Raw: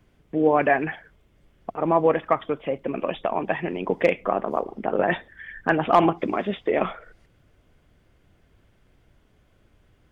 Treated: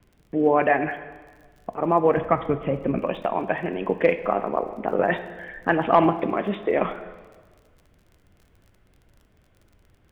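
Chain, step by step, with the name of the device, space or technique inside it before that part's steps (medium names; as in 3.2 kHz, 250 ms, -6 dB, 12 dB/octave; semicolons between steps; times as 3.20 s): lo-fi chain (low-pass 3.2 kHz 12 dB/octave; wow and flutter; crackle 34 per s -43 dBFS); 2.17–2.99 s: tone controls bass +12 dB, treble -4 dB; plate-style reverb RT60 1.5 s, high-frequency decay 0.95×, DRR 10.5 dB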